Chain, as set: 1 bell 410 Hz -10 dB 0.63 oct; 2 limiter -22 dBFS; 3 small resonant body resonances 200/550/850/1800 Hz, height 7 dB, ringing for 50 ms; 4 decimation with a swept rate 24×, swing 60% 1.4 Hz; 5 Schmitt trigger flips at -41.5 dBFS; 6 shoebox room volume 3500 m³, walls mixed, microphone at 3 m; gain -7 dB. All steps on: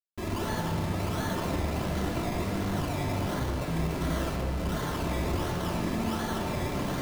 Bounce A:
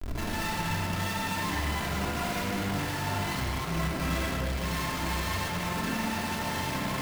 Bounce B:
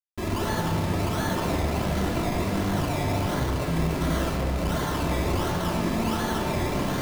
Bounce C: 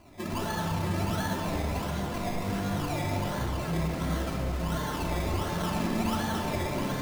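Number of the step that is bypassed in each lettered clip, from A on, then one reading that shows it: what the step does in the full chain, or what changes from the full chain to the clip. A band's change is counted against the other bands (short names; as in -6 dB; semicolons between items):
4, 500 Hz band -6.5 dB; 2, mean gain reduction 3.5 dB; 5, distortion -2 dB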